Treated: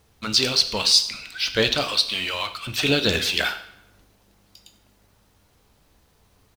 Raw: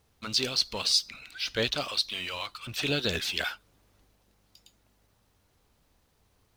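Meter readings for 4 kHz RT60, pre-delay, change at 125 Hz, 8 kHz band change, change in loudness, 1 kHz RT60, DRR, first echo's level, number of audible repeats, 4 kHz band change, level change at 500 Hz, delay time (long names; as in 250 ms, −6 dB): 0.70 s, 7 ms, +7.0 dB, +8.0 dB, +8.0 dB, 0.80 s, 8.5 dB, −20.0 dB, 1, +8.0 dB, +8.0 dB, 95 ms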